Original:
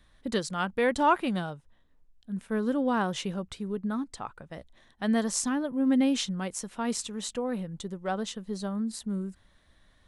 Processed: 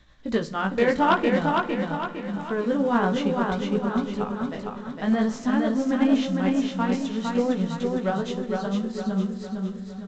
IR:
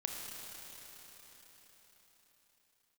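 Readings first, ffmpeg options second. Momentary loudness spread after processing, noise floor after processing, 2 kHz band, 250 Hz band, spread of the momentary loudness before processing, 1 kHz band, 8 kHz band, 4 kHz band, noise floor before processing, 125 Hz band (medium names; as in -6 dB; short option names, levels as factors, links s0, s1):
9 LU, -38 dBFS, +5.5 dB, +6.0 dB, 14 LU, +5.0 dB, no reading, +1.0 dB, -64 dBFS, +7.0 dB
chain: -filter_complex "[0:a]acrossover=split=2800[s0][s1];[s1]acompressor=threshold=0.00355:ratio=4:attack=1:release=60[s2];[s0][s2]amix=inputs=2:normalize=0,flanger=delay=16:depth=5.5:speed=0.53,tremolo=f=8.8:d=0.46,aeval=exprs='0.211*sin(PI/2*2*val(0)/0.211)':c=same,aecho=1:1:458|916|1374|1832|2290|2748:0.668|0.307|0.141|0.0651|0.0299|0.0138,asplit=2[s3][s4];[1:a]atrim=start_sample=2205,lowshelf=f=330:g=6.5,adelay=54[s5];[s4][s5]afir=irnorm=-1:irlink=0,volume=0.168[s6];[s3][s6]amix=inputs=2:normalize=0" -ar 16000 -c:a pcm_mulaw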